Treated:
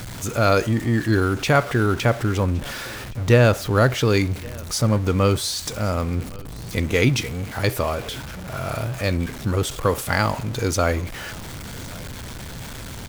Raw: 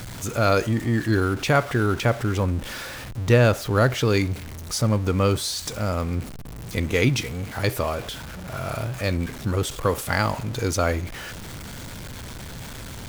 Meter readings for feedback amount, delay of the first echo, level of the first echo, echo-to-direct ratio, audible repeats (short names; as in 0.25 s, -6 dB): no steady repeat, 1.116 s, -23.0 dB, -23.0 dB, 1